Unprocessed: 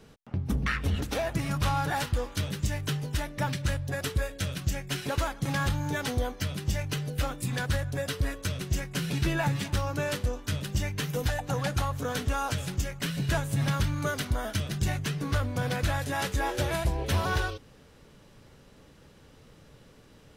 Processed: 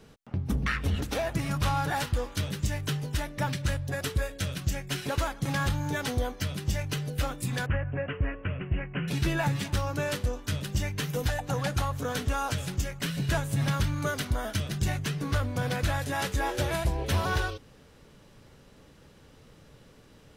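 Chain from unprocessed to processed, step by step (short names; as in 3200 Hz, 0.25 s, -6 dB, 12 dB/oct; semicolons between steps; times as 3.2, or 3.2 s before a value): 7.66–9.08 steep low-pass 2900 Hz 96 dB/oct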